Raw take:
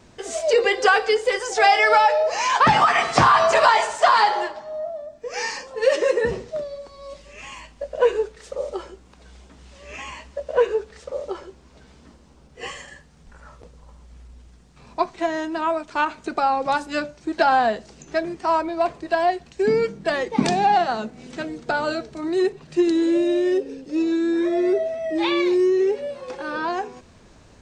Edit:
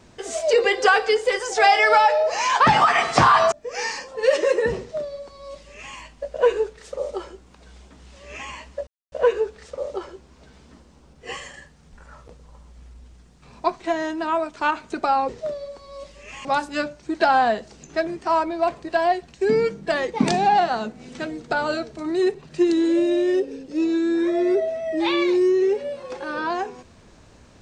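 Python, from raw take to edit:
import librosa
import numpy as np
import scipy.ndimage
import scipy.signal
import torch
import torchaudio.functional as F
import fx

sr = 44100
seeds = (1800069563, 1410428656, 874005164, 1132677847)

y = fx.edit(x, sr, fx.cut(start_s=3.52, length_s=1.59),
    fx.duplicate(start_s=6.39, length_s=1.16, to_s=16.63),
    fx.insert_silence(at_s=10.46, length_s=0.25), tone=tone)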